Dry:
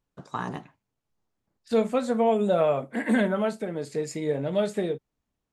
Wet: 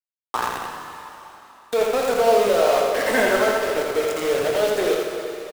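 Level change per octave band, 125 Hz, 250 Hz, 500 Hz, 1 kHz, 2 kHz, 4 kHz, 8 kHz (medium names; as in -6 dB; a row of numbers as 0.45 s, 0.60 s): no reading, -3.5 dB, +7.0 dB, +8.5 dB, +10.5 dB, +12.5 dB, +13.0 dB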